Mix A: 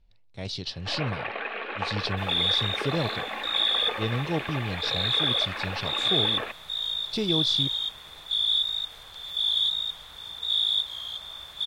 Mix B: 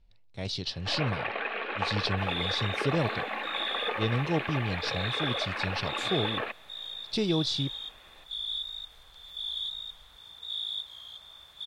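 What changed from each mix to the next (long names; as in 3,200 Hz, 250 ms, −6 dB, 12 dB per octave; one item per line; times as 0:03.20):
second sound −10.0 dB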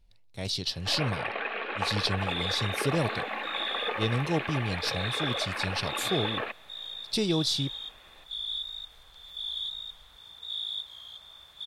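speech: remove high-frequency loss of the air 100 metres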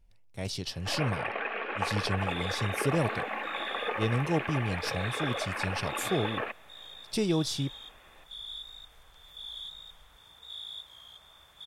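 master: add parametric band 4,000 Hz −10.5 dB 0.57 octaves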